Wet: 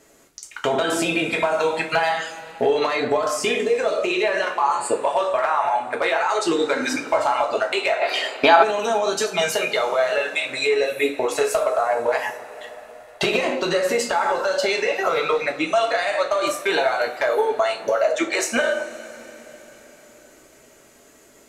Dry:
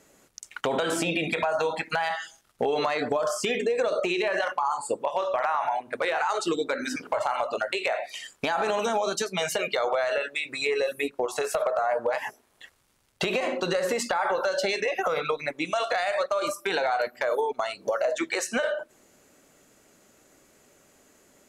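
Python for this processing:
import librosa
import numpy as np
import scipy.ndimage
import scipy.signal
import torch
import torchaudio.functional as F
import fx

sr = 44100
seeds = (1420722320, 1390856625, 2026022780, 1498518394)

y = fx.rev_double_slope(x, sr, seeds[0], early_s=0.28, late_s=4.4, knee_db=-22, drr_db=0.5)
y = fx.spec_box(y, sr, start_s=8.02, length_s=0.61, low_hz=240.0, high_hz=5100.0, gain_db=10)
y = fx.rider(y, sr, range_db=3, speed_s=0.5)
y = y * 10.0 ** (2.5 / 20.0)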